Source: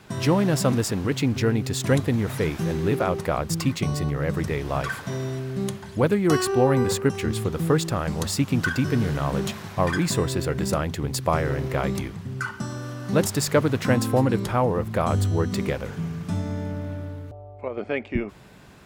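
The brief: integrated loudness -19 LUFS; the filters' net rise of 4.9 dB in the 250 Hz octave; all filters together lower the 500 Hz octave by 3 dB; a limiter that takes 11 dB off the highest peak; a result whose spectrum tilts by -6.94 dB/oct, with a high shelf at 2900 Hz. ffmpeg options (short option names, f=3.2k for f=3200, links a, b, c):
-af "equalizer=f=250:t=o:g=8,equalizer=f=500:t=o:g=-6.5,highshelf=f=2.9k:g=-8,volume=6.5dB,alimiter=limit=-8.5dB:level=0:latency=1"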